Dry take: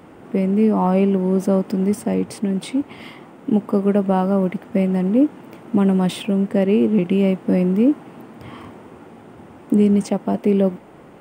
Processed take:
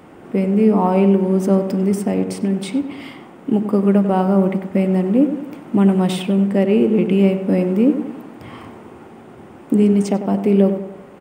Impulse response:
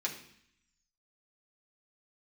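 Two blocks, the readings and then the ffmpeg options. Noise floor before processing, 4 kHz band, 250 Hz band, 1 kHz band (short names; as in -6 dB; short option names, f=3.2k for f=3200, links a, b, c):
-43 dBFS, +1.5 dB, +2.0 dB, +2.0 dB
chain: -filter_complex "[0:a]asplit=2[a][b];[b]adelay=96,lowpass=f=1.8k:p=1,volume=-9dB,asplit=2[c][d];[d]adelay=96,lowpass=f=1.8k:p=1,volume=0.48,asplit=2[e][f];[f]adelay=96,lowpass=f=1.8k:p=1,volume=0.48,asplit=2[g][h];[h]adelay=96,lowpass=f=1.8k:p=1,volume=0.48,asplit=2[i][j];[j]adelay=96,lowpass=f=1.8k:p=1,volume=0.48[k];[a][c][e][g][i][k]amix=inputs=6:normalize=0,asplit=2[l][m];[1:a]atrim=start_sample=2205[n];[m][n]afir=irnorm=-1:irlink=0,volume=-13.5dB[o];[l][o]amix=inputs=2:normalize=0"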